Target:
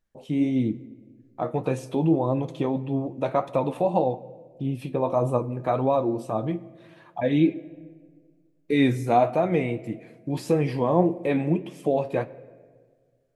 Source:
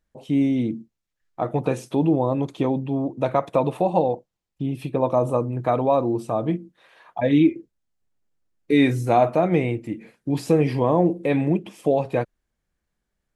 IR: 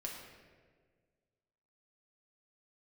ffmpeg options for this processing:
-filter_complex "[0:a]flanger=delay=7.6:depth=5.2:regen=56:speed=1.7:shape=sinusoidal,asplit=2[a][b];[1:a]atrim=start_sample=2205[c];[b][c]afir=irnorm=-1:irlink=0,volume=-12dB[d];[a][d]amix=inputs=2:normalize=0"

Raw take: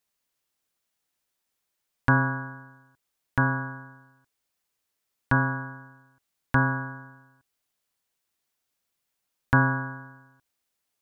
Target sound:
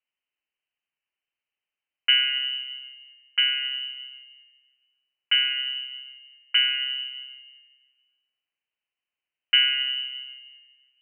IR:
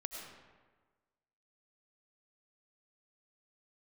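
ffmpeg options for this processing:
-filter_complex "[0:a]equalizer=f=2k:w=0.69:g=-12,asplit=2[a][b];[1:a]atrim=start_sample=2205,asetrate=35721,aresample=44100[c];[b][c]afir=irnorm=-1:irlink=0,volume=-5dB[d];[a][d]amix=inputs=2:normalize=0,lowpass=f=2.6k:t=q:w=0.5098,lowpass=f=2.6k:t=q:w=0.6013,lowpass=f=2.6k:t=q:w=0.9,lowpass=f=2.6k:t=q:w=2.563,afreqshift=-3100"

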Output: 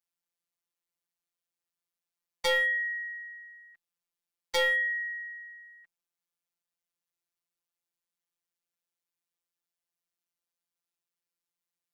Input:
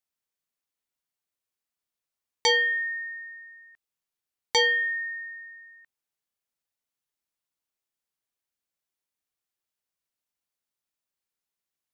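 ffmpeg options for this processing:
-af "afreqshift=27,aeval=exprs='clip(val(0),-1,0.0891)':c=same,afftfilt=real='hypot(re,im)*cos(PI*b)':imag='0':win_size=1024:overlap=0.75"

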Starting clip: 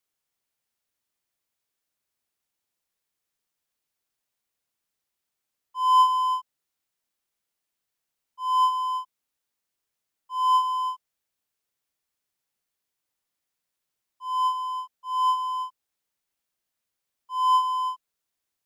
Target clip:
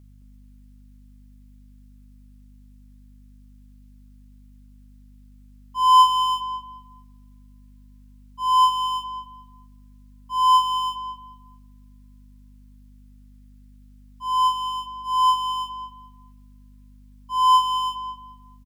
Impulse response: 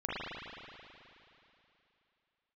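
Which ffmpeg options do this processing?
-filter_complex "[0:a]highpass=990,aeval=exprs='val(0)+0.00158*(sin(2*PI*50*n/s)+sin(2*PI*2*50*n/s)/2+sin(2*PI*3*50*n/s)/3+sin(2*PI*4*50*n/s)/4+sin(2*PI*5*50*n/s)/5)':c=same,asplit=2[a][b];[b]adelay=216,lowpass=f=1.9k:p=1,volume=-6.5dB,asplit=2[c][d];[d]adelay=216,lowpass=f=1.9k:p=1,volume=0.27,asplit=2[e][f];[f]adelay=216,lowpass=f=1.9k:p=1,volume=0.27[g];[a][c][e][g]amix=inputs=4:normalize=0,asplit=2[h][i];[1:a]atrim=start_sample=2205,asetrate=52920,aresample=44100[j];[i][j]afir=irnorm=-1:irlink=0,volume=-20.5dB[k];[h][k]amix=inputs=2:normalize=0,volume=7.5dB"

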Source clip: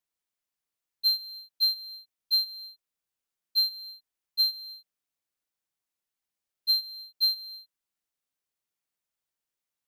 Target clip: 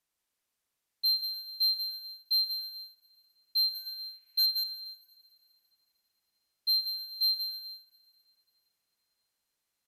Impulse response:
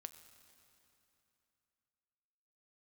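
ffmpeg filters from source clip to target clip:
-filter_complex "[0:a]asettb=1/sr,asplit=3[a][b][c];[a]atrim=end=3.744[d];[b]atrim=start=3.74:end=4.46,asetpts=PTS-STARTPTS,afade=t=in:d=0.004:c=qsin,afade=t=out:st=0.716:d=0.004:c=qsin,equalizer=f=2.3k:w=1.4:g=14[e];[c]atrim=start=4.456[f];[d][e]acrossfade=d=0.004:c1=hsin:c2=qsin[g];[g][f]acrossfade=d=0.004:c1=qsin:c2=hsin,asoftclip=type=tanh:threshold=-27.5dB,aecho=1:1:178:0.531,asplit=2[h][i];[1:a]atrim=start_sample=2205,asetrate=40572,aresample=44100[j];[i][j]afir=irnorm=-1:irlink=0,volume=10dB[k];[h][k]amix=inputs=2:normalize=0,aresample=32000,aresample=44100,volume=-4dB"

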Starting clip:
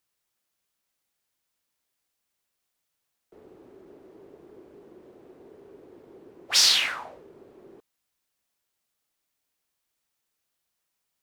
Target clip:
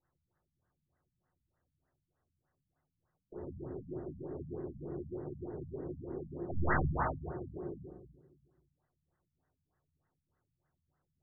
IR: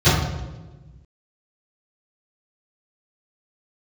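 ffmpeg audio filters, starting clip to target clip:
-filter_complex "[0:a]aeval=exprs='if(lt(val(0),0),0.708*val(0),val(0))':c=same,asplit=2[a][b];[1:a]atrim=start_sample=2205[c];[b][c]afir=irnorm=-1:irlink=0,volume=-25dB[d];[a][d]amix=inputs=2:normalize=0,afftfilt=real='re*lt(b*sr/1024,230*pow(2100/230,0.5+0.5*sin(2*PI*3.3*pts/sr)))':imag='im*lt(b*sr/1024,230*pow(2100/230,0.5+0.5*sin(2*PI*3.3*pts/sr)))':win_size=1024:overlap=0.75,volume=5dB"

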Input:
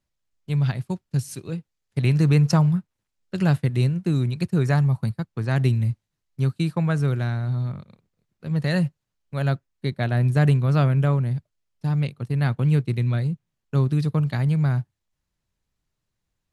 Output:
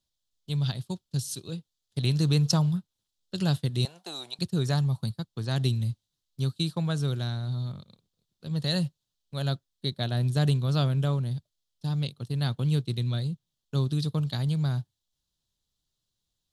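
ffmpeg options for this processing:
-filter_complex "[0:a]asettb=1/sr,asplit=3[a][b][c];[a]atrim=end=3.854[d];[b]atrim=start=3.85:end=4.39,asetpts=PTS-STARTPTS,afade=t=in:d=0.004:c=qsin,afade=t=out:st=0.536:d=0.004:c=qsin,highpass=f=750:t=q:w=4.9[e];[c]atrim=start=4.386[f];[d][e]acrossfade=d=0.004:c1=hsin:c2=qsin[g];[g][f]acrossfade=d=0.004:c1=qsin:c2=hsin,highshelf=f=2.8k:t=q:w=3:g=7.5,volume=-6dB"

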